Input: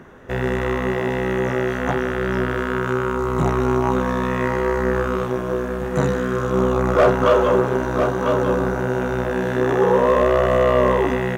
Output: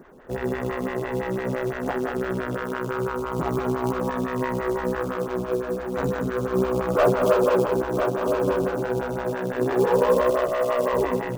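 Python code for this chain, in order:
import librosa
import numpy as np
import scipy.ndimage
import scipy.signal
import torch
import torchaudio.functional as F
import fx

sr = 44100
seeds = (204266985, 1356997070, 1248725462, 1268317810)

p1 = fx.highpass(x, sr, hz=490.0, slope=6, at=(10.3, 10.93))
p2 = p1 + 10.0 ** (-7.0 / 20.0) * np.pad(p1, (int(183 * sr / 1000.0), 0))[:len(p1)]
p3 = fx.sample_hold(p2, sr, seeds[0], rate_hz=2000.0, jitter_pct=20)
p4 = p2 + F.gain(torch.from_numpy(p3), -8.5).numpy()
p5 = fx.stagger_phaser(p4, sr, hz=5.9)
y = F.gain(torch.from_numpy(p5), -4.5).numpy()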